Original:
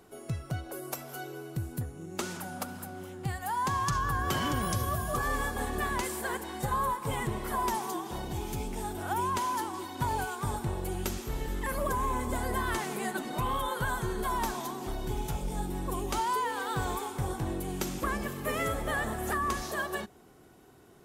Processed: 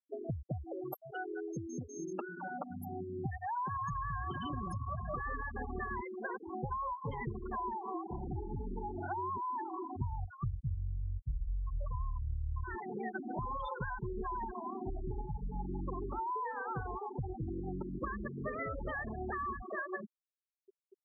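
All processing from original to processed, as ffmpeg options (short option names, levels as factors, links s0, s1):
-filter_complex "[0:a]asettb=1/sr,asplit=3[s0][s1][s2];[s0]atrim=end=1.114[s3];[s1]atrim=start=1.11:end=2.62,asetpts=PTS-STARTPTS,afade=t=in:d=0.004:c=qsin,afade=t=out:st=1.506:d=0.004:c=qsin,acrossover=split=210 5400:gain=0.158 1 0.0708[s4][s5][s6];[s4][s5][s6]amix=inputs=3:normalize=0,aeval=exprs='val(0)+0.00251*sin(2*PI*6400*n/s)':c=same[s7];[s2]atrim=start=2.616[s8];[s3][s7]acrossfade=d=0.004:c1=hsin:c2=qsin[s9];[s9][s8]acrossfade=d=0.004:c1=qsin:c2=hsin,asettb=1/sr,asplit=3[s10][s11][s12];[s10]atrim=end=9.964[s13];[s11]atrim=start=9.96:end=12.64,asetpts=PTS-STARTPTS,afade=t=in:d=0.004:c=qsin,afade=t=out:st=2.676:d=0.004:c=qsin,lowpass=f=1900:w=0.5412,lowpass=f=1900:w=1.3066,lowshelf=f=150:t=q:w=1.5:g=13,flanger=delay=4.7:depth=1.7:regen=-84:speed=1.2:shape=sinusoidal[s14];[s12]atrim=start=12.636[s15];[s13][s14]acrossfade=d=0.004:c1=hsin:c2=qsin[s16];[s16][s15]acrossfade=d=0.004:c1=qsin:c2=hsin,acompressor=threshold=0.00631:ratio=5,afftfilt=real='re*gte(hypot(re,im),0.0158)':imag='im*gte(hypot(re,im),0.0158)':win_size=1024:overlap=0.75,volume=2.51"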